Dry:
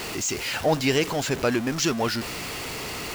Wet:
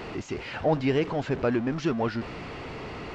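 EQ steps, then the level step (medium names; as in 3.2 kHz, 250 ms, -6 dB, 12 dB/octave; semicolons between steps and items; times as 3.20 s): tape spacing loss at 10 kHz 35 dB; 0.0 dB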